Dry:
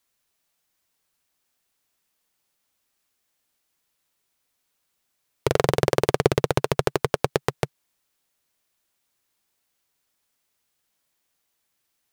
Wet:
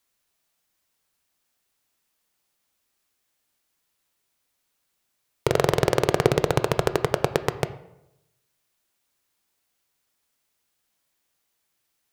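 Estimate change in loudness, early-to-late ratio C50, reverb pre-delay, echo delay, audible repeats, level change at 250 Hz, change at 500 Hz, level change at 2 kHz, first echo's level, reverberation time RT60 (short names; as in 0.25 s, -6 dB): +0.5 dB, 14.5 dB, 14 ms, none, none, +0.5 dB, +0.5 dB, +0.5 dB, none, 0.85 s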